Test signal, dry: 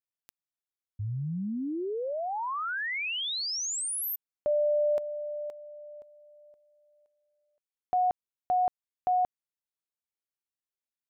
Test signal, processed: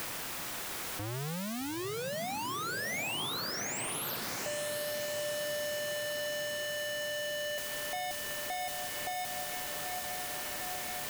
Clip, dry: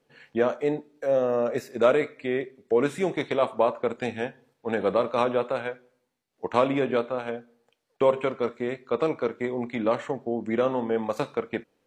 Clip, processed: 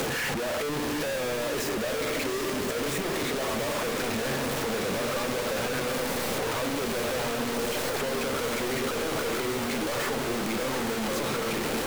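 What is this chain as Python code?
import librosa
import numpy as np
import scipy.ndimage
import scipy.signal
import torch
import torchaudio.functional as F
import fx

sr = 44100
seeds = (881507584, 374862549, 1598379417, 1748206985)

y = np.sign(x) * np.sqrt(np.mean(np.square(x)))
y = fx.echo_diffused(y, sr, ms=796, feedback_pct=75, wet_db=-7.0)
y = fx.band_squash(y, sr, depth_pct=70)
y = y * 10.0 ** (-4.0 / 20.0)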